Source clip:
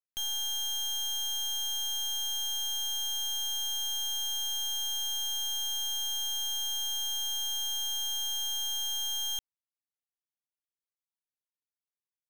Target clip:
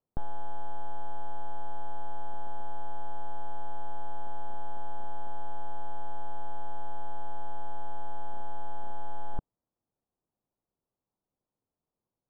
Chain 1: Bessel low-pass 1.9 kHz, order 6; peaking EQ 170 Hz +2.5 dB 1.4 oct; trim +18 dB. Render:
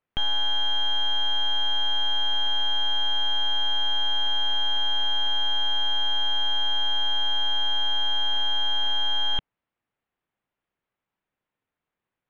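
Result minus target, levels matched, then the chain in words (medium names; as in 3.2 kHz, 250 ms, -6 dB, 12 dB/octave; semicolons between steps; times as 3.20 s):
500 Hz band -17.5 dB
Bessel low-pass 670 Hz, order 6; peaking EQ 170 Hz +2.5 dB 1.4 oct; trim +18 dB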